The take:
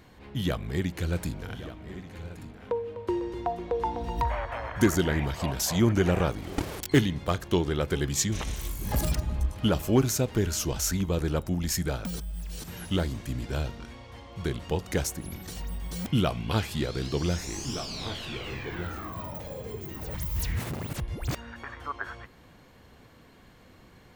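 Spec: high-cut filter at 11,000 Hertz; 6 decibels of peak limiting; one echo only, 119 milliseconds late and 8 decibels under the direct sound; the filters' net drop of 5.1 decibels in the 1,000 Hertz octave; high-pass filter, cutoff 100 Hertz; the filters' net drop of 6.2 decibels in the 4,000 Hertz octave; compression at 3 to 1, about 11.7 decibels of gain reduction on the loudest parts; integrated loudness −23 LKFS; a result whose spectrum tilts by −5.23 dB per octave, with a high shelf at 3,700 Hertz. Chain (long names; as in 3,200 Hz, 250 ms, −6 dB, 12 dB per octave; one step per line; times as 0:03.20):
high-pass filter 100 Hz
low-pass filter 11,000 Hz
parametric band 1,000 Hz −6 dB
high-shelf EQ 3,700 Hz −4.5 dB
parametric band 4,000 Hz −5 dB
downward compressor 3 to 1, threshold −33 dBFS
brickwall limiter −25 dBFS
single-tap delay 119 ms −8 dB
level +15.5 dB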